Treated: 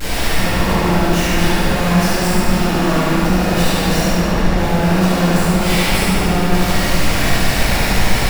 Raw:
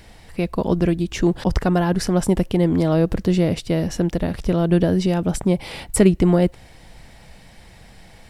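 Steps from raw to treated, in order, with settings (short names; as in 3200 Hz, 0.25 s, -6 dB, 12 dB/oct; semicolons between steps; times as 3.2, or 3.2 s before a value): infinite clipping; 4.02–4.57 LPF 2800 Hz 6 dB/oct; thinning echo 73 ms, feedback 69%, high-pass 420 Hz, level -3 dB; reverb RT60 3.0 s, pre-delay 4 ms, DRR -15 dB; gain -12 dB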